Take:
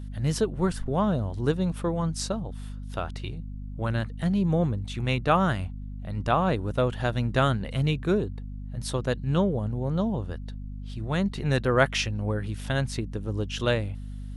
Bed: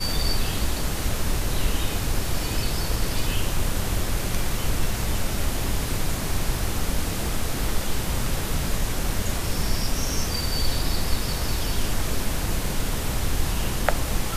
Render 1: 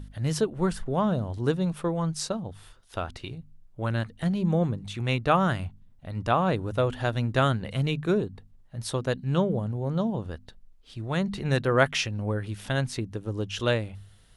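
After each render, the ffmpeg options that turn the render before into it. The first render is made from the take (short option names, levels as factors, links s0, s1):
-af "bandreject=f=50:t=h:w=4,bandreject=f=100:t=h:w=4,bandreject=f=150:t=h:w=4,bandreject=f=200:t=h:w=4,bandreject=f=250:t=h:w=4"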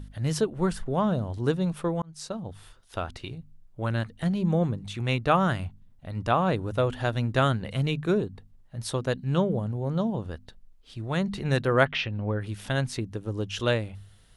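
-filter_complex "[0:a]asplit=3[s0][s1][s2];[s0]afade=t=out:st=11.84:d=0.02[s3];[s1]lowpass=f=3800:w=0.5412,lowpass=f=3800:w=1.3066,afade=t=in:st=11.84:d=0.02,afade=t=out:st=12.4:d=0.02[s4];[s2]afade=t=in:st=12.4:d=0.02[s5];[s3][s4][s5]amix=inputs=3:normalize=0,asplit=2[s6][s7];[s6]atrim=end=2.02,asetpts=PTS-STARTPTS,afade=t=out:st=2.016:d=0.004:c=hsin[s8];[s7]atrim=start=2.02,asetpts=PTS-STARTPTS,afade=t=in:d=0.48[s9];[s8][s9]concat=n=2:v=0:a=1"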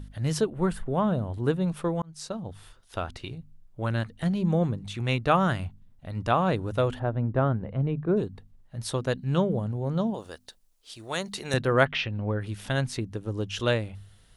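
-filter_complex "[0:a]asettb=1/sr,asplit=3[s0][s1][s2];[s0]atrim=end=0.504[s3];[s1]atrim=start=0.5:end=1.68,asetpts=PTS-STARTPTS,afade=t=in:d=0.004:c=qsin,afade=t=out:st=1.176:d=0.004:c=qsin,equalizer=f=5500:t=o:w=0.85:g=-10[s4];[s2]atrim=start=1.676[s5];[s3][s4]acrossfade=d=0.004:c1=hsin:c2=qsin[s6];[s6][s5]acrossfade=d=0.004:c1=qsin:c2=hsin,asplit=3[s7][s8][s9];[s7]afade=t=out:st=6.98:d=0.02[s10];[s8]lowpass=1000,afade=t=in:st=6.98:d=0.02,afade=t=out:st=8.16:d=0.02[s11];[s9]afade=t=in:st=8.16:d=0.02[s12];[s10][s11][s12]amix=inputs=3:normalize=0,asettb=1/sr,asplit=3[s13][s14][s15];[s13]atrim=end=10.144[s16];[s14]atrim=start=10.14:end=11.54,asetpts=PTS-STARTPTS,afade=t=in:d=0.004:c=qsin,afade=t=out:st=1.396:d=0.004:c=qsin,bass=f=250:g=-15,treble=f=4000:g=12[s17];[s15]atrim=start=11.536[s18];[s16][s17]acrossfade=d=0.004:c1=hsin:c2=qsin[s19];[s19][s18]acrossfade=d=0.004:c1=qsin:c2=hsin"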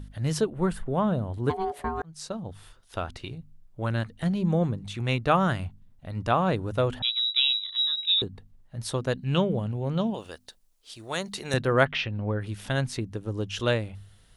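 -filter_complex "[0:a]asplit=3[s0][s1][s2];[s0]afade=t=out:st=1.49:d=0.02[s3];[s1]aeval=exprs='val(0)*sin(2*PI*570*n/s)':c=same,afade=t=in:st=1.49:d=0.02,afade=t=out:st=2.03:d=0.02[s4];[s2]afade=t=in:st=2.03:d=0.02[s5];[s3][s4][s5]amix=inputs=3:normalize=0,asettb=1/sr,asplit=3[s6][s7][s8];[s6]atrim=end=7.024[s9];[s7]atrim=start=7.02:end=8.22,asetpts=PTS-STARTPTS,afade=t=in:d=0.004:c=qsin,afade=t=out:st=1.196:d=0.004:c=qsin,lowpass=f=3400:t=q:w=0.5098,lowpass=f=3400:t=q:w=0.6013,lowpass=f=3400:t=q:w=0.9,lowpass=f=3400:t=q:w=2.563,afreqshift=-4000[s10];[s8]atrim=start=8.216[s11];[s9][s10]acrossfade=d=0.004:c1=hsin:c2=qsin[s12];[s12][s11]acrossfade=d=0.004:c1=qsin:c2=hsin,asettb=1/sr,asplit=3[s13][s14][s15];[s13]atrim=end=9.244[s16];[s14]atrim=start=9.24:end=10.31,asetpts=PTS-STARTPTS,afade=t=in:d=0.004:c=qsin,afade=t=out:st=1.066:d=0.004:c=qsin,equalizer=f=2700:w=2.1:g=11.5[s17];[s15]atrim=start=10.306[s18];[s16][s17]acrossfade=d=0.004:c1=hsin:c2=qsin[s19];[s19][s18]acrossfade=d=0.004:c1=qsin:c2=hsin"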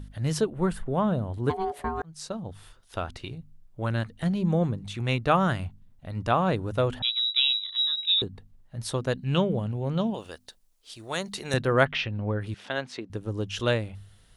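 -filter_complex "[0:a]asettb=1/sr,asplit=3[s0][s1][s2];[s0]atrim=end=12.544[s3];[s1]atrim=start=12.54:end=13.1,asetpts=PTS-STARTPTS,afade=t=in:d=0.004:c=qsin,afade=t=out:st=0.556:d=0.004:c=qsin,highpass=330,lowpass=4500[s4];[s2]atrim=start=13.096[s5];[s3][s4]acrossfade=d=0.004:c1=hsin:c2=qsin[s6];[s6][s5]acrossfade=d=0.004:c1=qsin:c2=hsin"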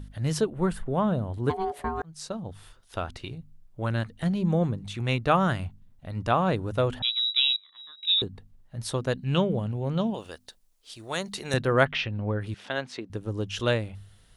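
-filter_complex "[0:a]asettb=1/sr,asplit=3[s0][s1][s2];[s0]atrim=end=7.564[s3];[s1]atrim=start=7.56:end=8.03,asetpts=PTS-STARTPTS,afade=t=in:d=0.004:c=qsin,afade=t=out:st=0.466:d=0.004:c=qsin,lowpass=1200[s4];[s2]atrim=start=8.026[s5];[s3][s4]acrossfade=d=0.004:c1=hsin:c2=qsin[s6];[s6][s5]acrossfade=d=0.004:c1=qsin:c2=hsin"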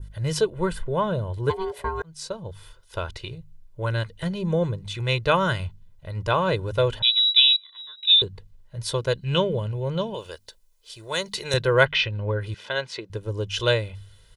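-af "adynamicequalizer=threshold=0.00794:dfrequency=3700:dqfactor=0.8:tfrequency=3700:tqfactor=0.8:attack=5:release=100:ratio=0.375:range=3:mode=boostabove:tftype=bell,aecho=1:1:2:0.78"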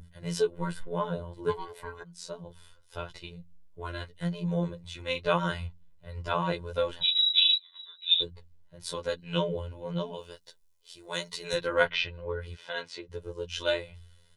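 -af "afftfilt=real='hypot(re,im)*cos(PI*b)':imag='0':win_size=2048:overlap=0.75,flanger=delay=4.1:depth=3.9:regen=-38:speed=0.88:shape=triangular"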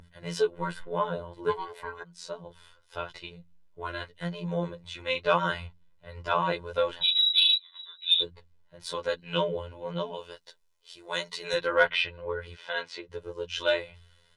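-filter_complex "[0:a]asplit=2[s0][s1];[s1]highpass=f=720:p=1,volume=3.16,asoftclip=type=tanh:threshold=0.531[s2];[s0][s2]amix=inputs=2:normalize=0,lowpass=f=2800:p=1,volume=0.501"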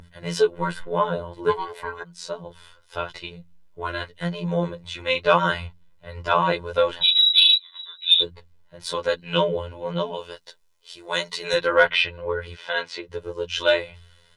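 -af "volume=2.11,alimiter=limit=0.794:level=0:latency=1"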